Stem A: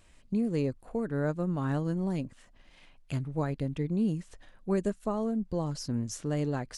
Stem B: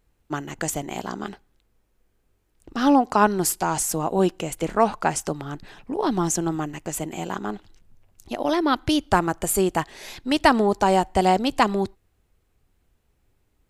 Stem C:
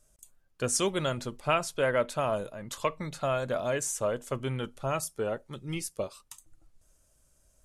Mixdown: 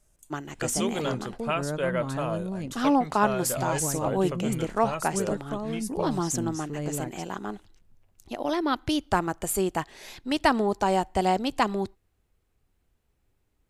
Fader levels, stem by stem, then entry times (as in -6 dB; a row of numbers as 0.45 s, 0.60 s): -2.0 dB, -5.0 dB, -2.0 dB; 0.45 s, 0.00 s, 0.00 s